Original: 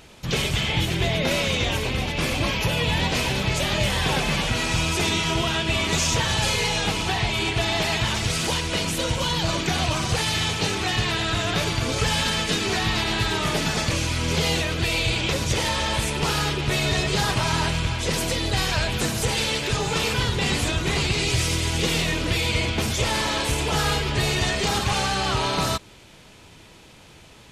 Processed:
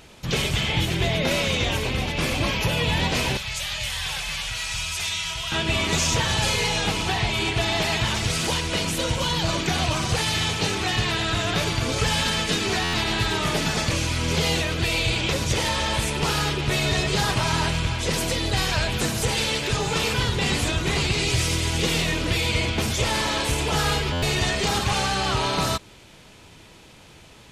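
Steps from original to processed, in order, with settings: 3.37–5.52 passive tone stack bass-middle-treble 10-0-10; stuck buffer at 12.83/24.12, samples 512, times 8

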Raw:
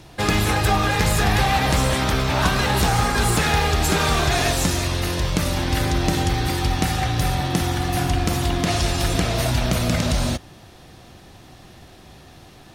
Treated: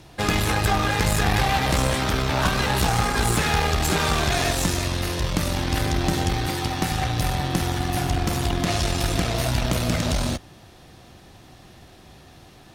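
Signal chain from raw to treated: 6.46–6.92 HPF 93 Hz; tube stage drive 12 dB, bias 0.7; gain +1.5 dB

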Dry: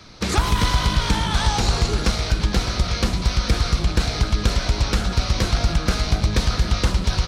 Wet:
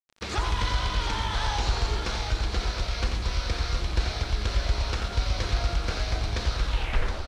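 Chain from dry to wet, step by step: tape stop at the end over 0.71 s; bell 180 Hz -11 dB 1.4 oct; de-hum 65.65 Hz, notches 38; bit-crush 6-bit; air absorption 86 m; on a send: tapped delay 88/718 ms -6/-7.5 dB; on the sum: gain -6 dB

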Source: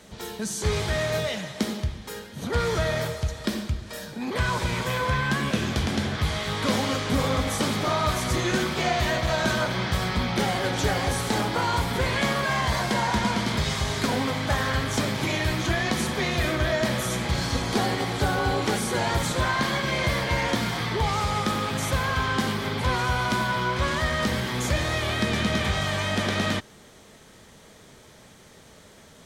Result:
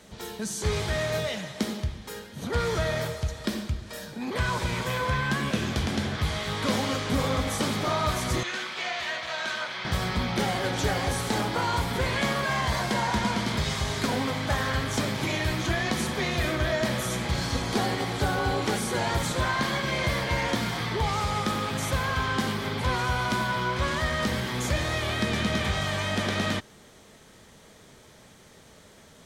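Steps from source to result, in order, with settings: 8.43–9.85 band-pass 2500 Hz, Q 0.68; gain -2 dB

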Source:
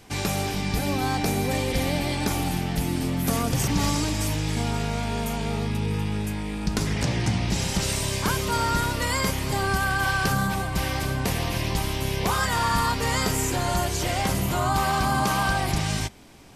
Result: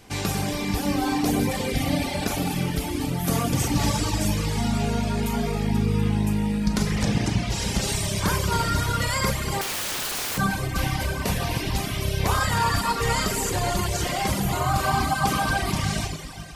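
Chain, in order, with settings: Schroeder reverb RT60 2.8 s, combs from 30 ms, DRR 0 dB; reverb removal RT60 1.1 s; 9.61–10.38 wrapped overs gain 24 dB

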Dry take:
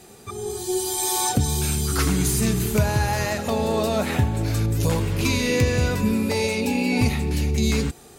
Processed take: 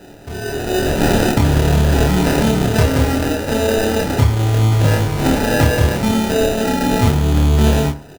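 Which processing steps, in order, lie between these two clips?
high shelf 5700 Hz +7 dB; notch 680 Hz, Q 12; sample-rate reducer 1100 Hz, jitter 0%; doubler 27 ms -3 dB; reverb RT60 0.55 s, pre-delay 4 ms, DRR 9.5 dB; gain +3.5 dB

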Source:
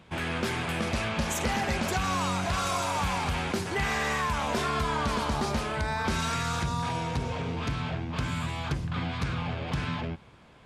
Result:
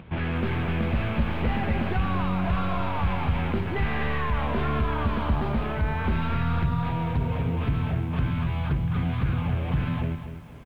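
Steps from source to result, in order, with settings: tracing distortion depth 0.16 ms; inverse Chebyshev low-pass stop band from 6100 Hz, stop band 40 dB; low shelf 250 Hz +11 dB; in parallel at 0 dB: limiter -21 dBFS, peak gain reduction 10 dB; on the sum: upward compressor, threshold -34 dBFS; on a send: feedback echo 81 ms, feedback 44%, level -23.5 dB; on the sum: lo-fi delay 0.242 s, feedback 35%, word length 8-bit, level -10 dB; gain -6.5 dB

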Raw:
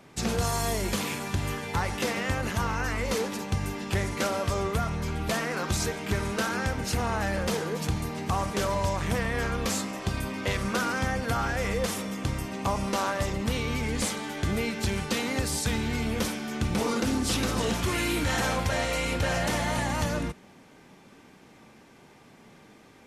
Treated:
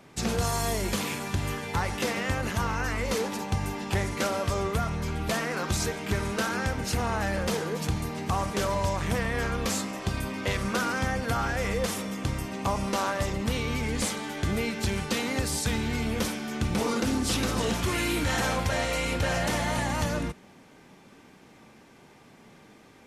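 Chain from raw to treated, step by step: 3.25–4.03 bell 840 Hz +6 dB 0.4 oct

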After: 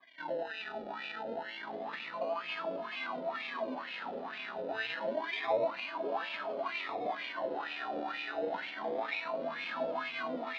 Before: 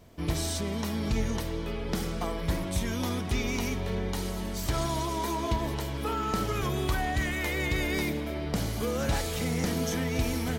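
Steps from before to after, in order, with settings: elliptic high-pass 160 Hz; notch 450 Hz, Q 12; small resonant body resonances 270/660/1000 Hz, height 14 dB; in parallel at +1 dB: limiter -28 dBFS, peak gain reduction 16 dB; on the sum: decimation with a swept rate 32×, swing 60% 0.28 Hz; on a send: echo with dull and thin repeats by turns 0.71 s, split 1200 Hz, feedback 67%, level -3.5 dB; on the sum: wah 2.1 Hz 510–2500 Hz, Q 5.7; synth low-pass 3900 Hz, resonance Q 3.1; gain -4 dB

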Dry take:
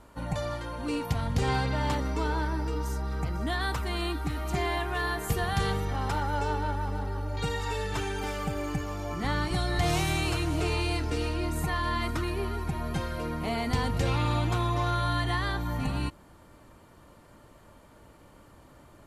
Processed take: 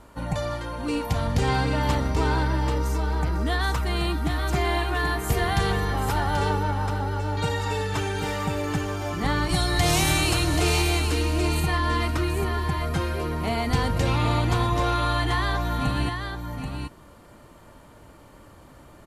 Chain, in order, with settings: 9.49–10.82 high shelf 3700 Hz +8.5 dB; echo 0.783 s -6 dB; gain +4 dB

